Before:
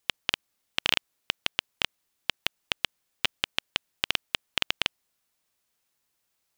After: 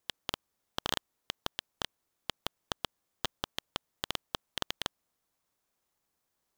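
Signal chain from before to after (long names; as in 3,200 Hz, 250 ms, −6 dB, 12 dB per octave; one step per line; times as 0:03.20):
flat-topped bell 2,000 Hz −13.5 dB 1.1 octaves
in parallel at −5 dB: decimation without filtering 9×
on the sum: level −6 dB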